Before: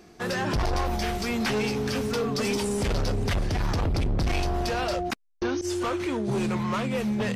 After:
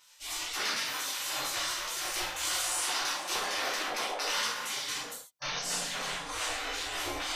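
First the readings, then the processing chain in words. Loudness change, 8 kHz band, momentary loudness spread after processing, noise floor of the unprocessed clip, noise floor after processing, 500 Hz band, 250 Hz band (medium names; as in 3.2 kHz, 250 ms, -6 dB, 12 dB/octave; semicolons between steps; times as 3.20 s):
-4.5 dB, +6.5 dB, 5 LU, -52 dBFS, -51 dBFS, -14.0 dB, -21.5 dB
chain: spectral gate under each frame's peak -25 dB weak; gated-style reverb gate 180 ms falling, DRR -7.5 dB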